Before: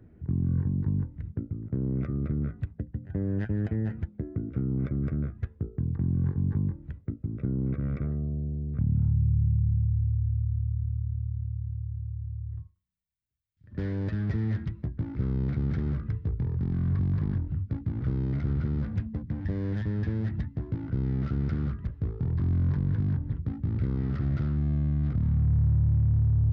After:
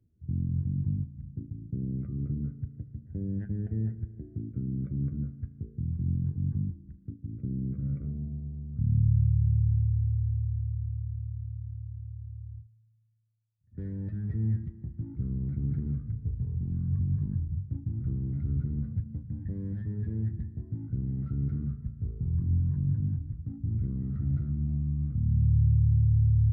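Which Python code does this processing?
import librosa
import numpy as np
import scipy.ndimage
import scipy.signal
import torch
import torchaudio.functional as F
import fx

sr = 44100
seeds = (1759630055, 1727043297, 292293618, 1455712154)

y = fx.rev_spring(x, sr, rt60_s=3.0, pass_ms=(36,), chirp_ms=80, drr_db=9.5)
y = fx.spectral_expand(y, sr, expansion=1.5)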